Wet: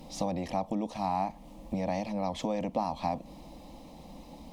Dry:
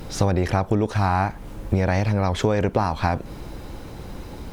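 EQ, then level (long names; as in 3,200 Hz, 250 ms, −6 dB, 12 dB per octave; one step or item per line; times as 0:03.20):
low-shelf EQ 69 Hz −10.5 dB
high-shelf EQ 6,500 Hz −7 dB
phaser with its sweep stopped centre 400 Hz, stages 6
−6.0 dB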